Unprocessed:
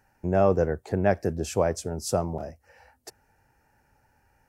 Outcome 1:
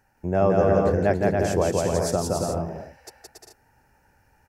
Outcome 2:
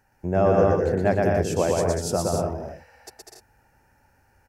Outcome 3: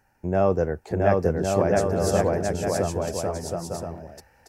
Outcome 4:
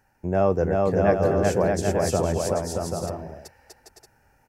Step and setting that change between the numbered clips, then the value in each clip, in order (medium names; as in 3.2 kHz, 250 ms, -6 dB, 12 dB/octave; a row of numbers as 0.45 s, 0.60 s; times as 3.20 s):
bouncing-ball echo, first gap: 170 ms, 120 ms, 670 ms, 380 ms